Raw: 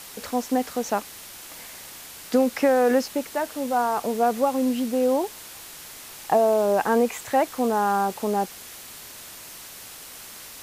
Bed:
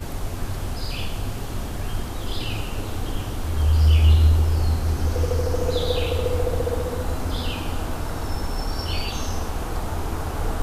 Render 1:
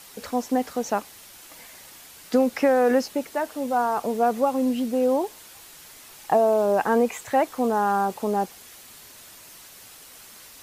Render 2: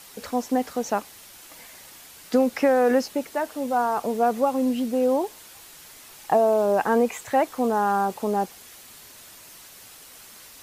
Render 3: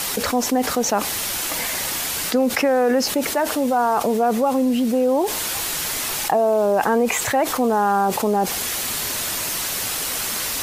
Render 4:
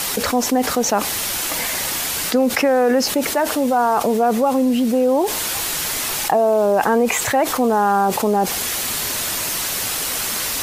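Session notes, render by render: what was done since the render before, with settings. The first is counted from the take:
noise reduction 6 dB, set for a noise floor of -42 dBFS
no audible change
level flattener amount 70%
trim +2 dB

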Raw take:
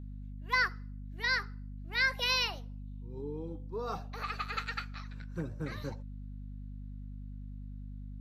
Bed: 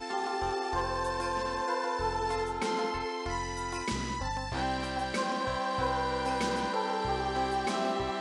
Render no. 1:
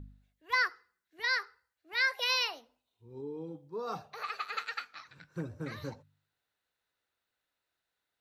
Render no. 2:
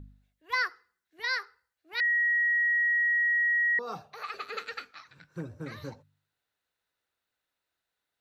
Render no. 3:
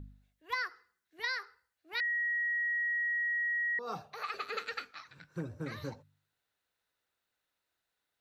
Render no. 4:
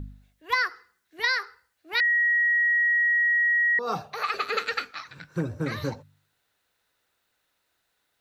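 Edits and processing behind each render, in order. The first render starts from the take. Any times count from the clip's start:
de-hum 50 Hz, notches 5
2.00–3.79 s: bleep 1.9 kHz -22.5 dBFS; 4.34–4.91 s: resonant low shelf 590 Hz +10 dB, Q 1.5
compression 10:1, threshold -31 dBFS, peak gain reduction 7.5 dB
trim +10.5 dB

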